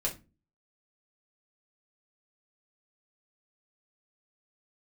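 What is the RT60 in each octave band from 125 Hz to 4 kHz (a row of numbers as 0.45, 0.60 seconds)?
0.50, 0.50, 0.30, 0.25, 0.25, 0.20 seconds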